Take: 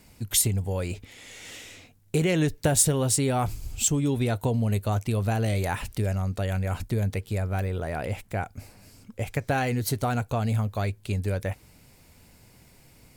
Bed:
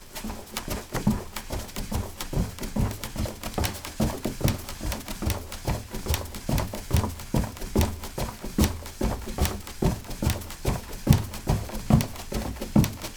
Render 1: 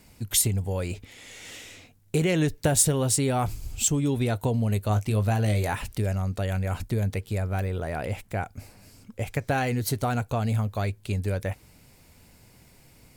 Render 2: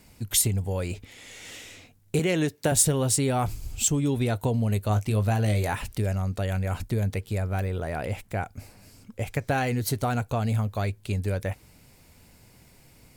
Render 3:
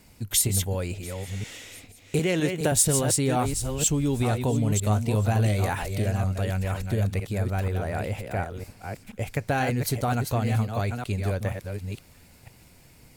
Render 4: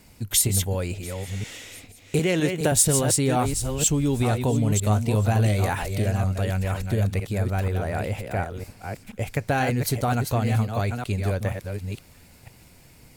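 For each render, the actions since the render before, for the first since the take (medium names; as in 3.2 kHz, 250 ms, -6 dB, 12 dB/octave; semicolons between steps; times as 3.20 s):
4.88–5.74 s: doubling 19 ms -9 dB
2.19–2.72 s: high-pass 170 Hz
chunks repeated in reverse 480 ms, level -6 dB; feedback echo behind a high-pass 688 ms, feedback 55%, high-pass 2.5 kHz, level -21 dB
trim +2 dB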